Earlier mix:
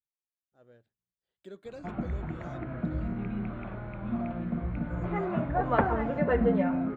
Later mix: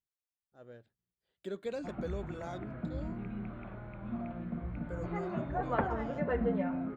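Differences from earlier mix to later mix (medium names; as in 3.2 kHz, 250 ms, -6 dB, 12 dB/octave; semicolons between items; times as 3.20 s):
speech +6.0 dB; background -6.5 dB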